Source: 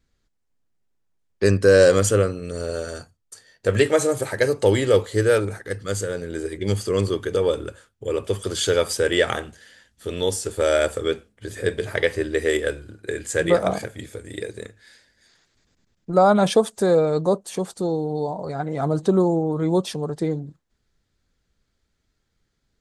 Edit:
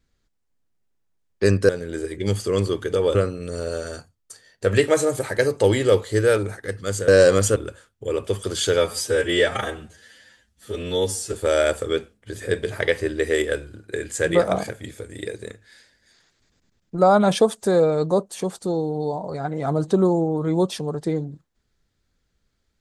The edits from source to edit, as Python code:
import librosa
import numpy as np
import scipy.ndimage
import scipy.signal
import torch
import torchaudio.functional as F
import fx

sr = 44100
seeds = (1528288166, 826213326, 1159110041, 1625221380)

y = fx.edit(x, sr, fx.swap(start_s=1.69, length_s=0.48, other_s=6.1, other_length_s=1.46),
    fx.stretch_span(start_s=8.78, length_s=1.7, factor=1.5), tone=tone)